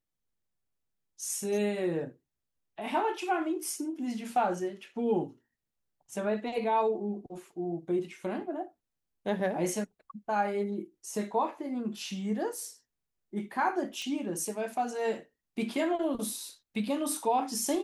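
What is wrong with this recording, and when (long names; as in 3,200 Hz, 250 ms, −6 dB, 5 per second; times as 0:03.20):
0:14.02: click −25 dBFS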